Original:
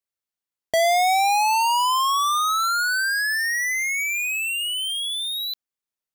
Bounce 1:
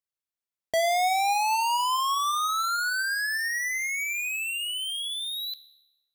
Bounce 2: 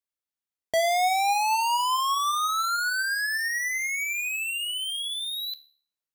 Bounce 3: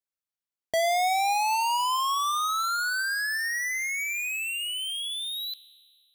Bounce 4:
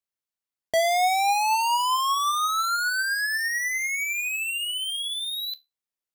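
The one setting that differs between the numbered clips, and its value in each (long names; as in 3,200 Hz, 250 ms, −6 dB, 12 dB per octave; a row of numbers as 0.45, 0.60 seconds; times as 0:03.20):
tuned comb filter, decay: 0.98, 0.47, 2.1, 0.2 seconds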